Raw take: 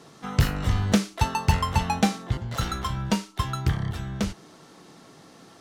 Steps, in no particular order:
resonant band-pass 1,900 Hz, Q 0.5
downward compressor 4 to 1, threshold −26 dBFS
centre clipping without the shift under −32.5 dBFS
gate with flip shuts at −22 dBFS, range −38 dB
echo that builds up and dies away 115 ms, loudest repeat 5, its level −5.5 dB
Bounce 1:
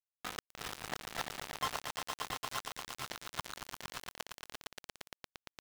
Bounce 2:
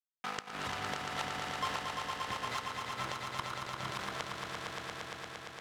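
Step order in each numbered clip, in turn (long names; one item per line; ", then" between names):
downward compressor, then resonant band-pass, then gate with flip, then echo that builds up and dies away, then centre clipping without the shift
downward compressor, then centre clipping without the shift, then resonant band-pass, then gate with flip, then echo that builds up and dies away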